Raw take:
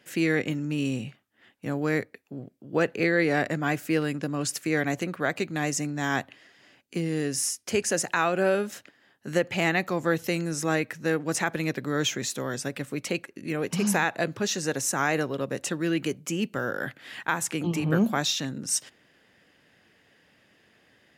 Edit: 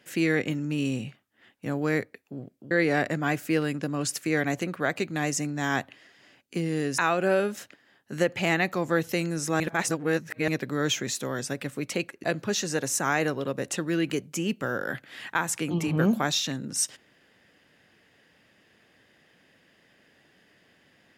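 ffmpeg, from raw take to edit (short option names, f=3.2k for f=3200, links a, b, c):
-filter_complex "[0:a]asplit=6[a][b][c][d][e][f];[a]atrim=end=2.712[g];[b]atrim=start=3.108:end=7.382[h];[c]atrim=start=8.128:end=10.752[i];[d]atrim=start=10.748:end=11.632,asetpts=PTS-STARTPTS,areverse[j];[e]atrim=start=11.628:end=13.392[k];[f]atrim=start=14.168[l];[g][h]acrossfade=d=0.004:c1=hsin:c2=hsin[m];[m][i]acrossfade=d=0.004:c1=hsin:c2=hsin[n];[n][j]acrossfade=d=0.004:c1=hsin:c2=hsin[o];[o][k]acrossfade=d=0.004:c1=hsin:c2=hsin[p];[p][l]acrossfade=d=0.004:c1=hsin:c2=hsin"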